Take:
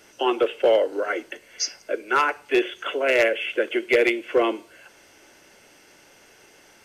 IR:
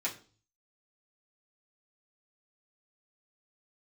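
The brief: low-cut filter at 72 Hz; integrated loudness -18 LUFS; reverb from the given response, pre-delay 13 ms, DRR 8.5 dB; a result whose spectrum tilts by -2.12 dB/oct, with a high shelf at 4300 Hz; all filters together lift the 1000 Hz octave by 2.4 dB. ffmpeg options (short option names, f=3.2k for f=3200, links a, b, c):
-filter_complex "[0:a]highpass=72,equalizer=f=1k:t=o:g=3.5,highshelf=f=4.3k:g=-3,asplit=2[a][b];[1:a]atrim=start_sample=2205,adelay=13[c];[b][c]afir=irnorm=-1:irlink=0,volume=-13dB[d];[a][d]amix=inputs=2:normalize=0,volume=4dB"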